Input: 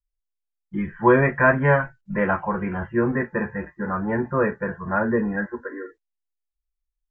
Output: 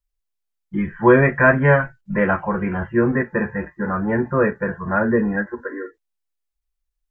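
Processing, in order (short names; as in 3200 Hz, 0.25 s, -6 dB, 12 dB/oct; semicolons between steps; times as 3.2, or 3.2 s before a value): dynamic EQ 930 Hz, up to -4 dB, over -35 dBFS, Q 2.2; ending taper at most 370 dB/s; gain +4 dB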